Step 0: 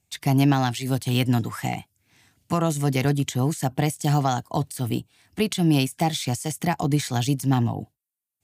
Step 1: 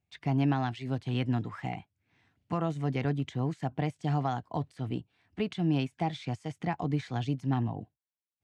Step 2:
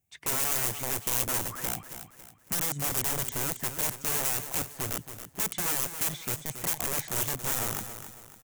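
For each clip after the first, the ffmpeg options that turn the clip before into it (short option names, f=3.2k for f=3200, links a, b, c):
-af "lowpass=2.7k,volume=-8dB"
-af "aeval=exprs='(mod(29.9*val(0)+1,2)-1)/29.9':c=same,aecho=1:1:276|552|828|1104:0.299|0.116|0.0454|0.0177,aexciter=amount=3:drive=8.2:freq=6.1k"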